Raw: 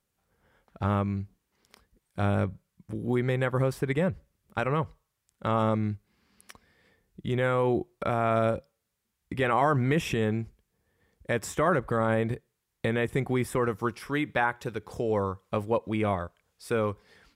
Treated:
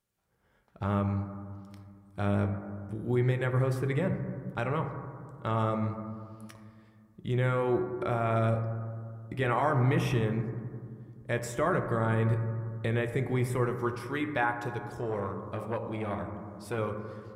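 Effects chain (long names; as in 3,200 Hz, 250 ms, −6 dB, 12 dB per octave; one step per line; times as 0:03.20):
0:09.70–0:10.43: notch filter 7,400 Hz, Q 6
convolution reverb RT60 2.2 s, pre-delay 4 ms, DRR 5 dB
0:14.89–0:16.78: saturating transformer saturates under 650 Hz
level −4.5 dB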